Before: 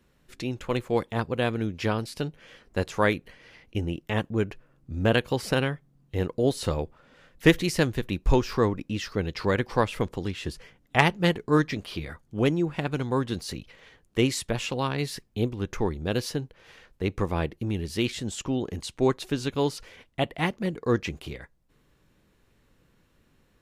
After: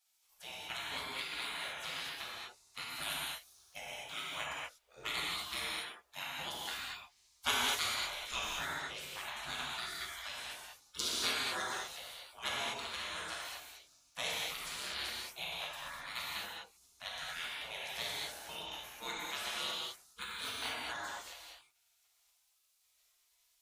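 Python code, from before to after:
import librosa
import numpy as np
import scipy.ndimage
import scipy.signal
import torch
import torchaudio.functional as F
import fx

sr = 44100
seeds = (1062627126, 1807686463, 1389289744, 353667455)

y = fx.spec_quant(x, sr, step_db=15)
y = scipy.signal.sosfilt(scipy.signal.butter(2, 150.0, 'highpass', fs=sr, output='sos'), y)
y = fx.spec_gate(y, sr, threshold_db=-25, keep='weak')
y = fx.high_shelf(y, sr, hz=10000.0, db=11.0, at=(2.9, 3.76))
y = fx.rev_gated(y, sr, seeds[0], gate_ms=270, shape='flat', drr_db=-6.0)
y = y * librosa.db_to_amplitude(1.0)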